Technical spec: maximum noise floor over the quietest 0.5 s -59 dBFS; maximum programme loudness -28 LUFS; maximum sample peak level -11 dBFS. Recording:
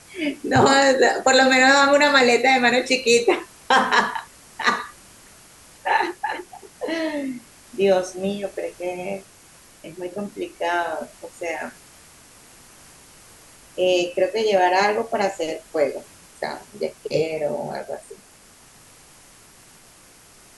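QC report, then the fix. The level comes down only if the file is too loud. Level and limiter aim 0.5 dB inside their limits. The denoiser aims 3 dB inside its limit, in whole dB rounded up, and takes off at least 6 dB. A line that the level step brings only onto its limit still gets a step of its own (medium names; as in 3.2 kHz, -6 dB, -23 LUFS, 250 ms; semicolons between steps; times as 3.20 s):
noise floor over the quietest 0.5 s -50 dBFS: fail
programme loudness -20.0 LUFS: fail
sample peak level -5.0 dBFS: fail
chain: noise reduction 6 dB, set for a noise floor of -50 dBFS; trim -8.5 dB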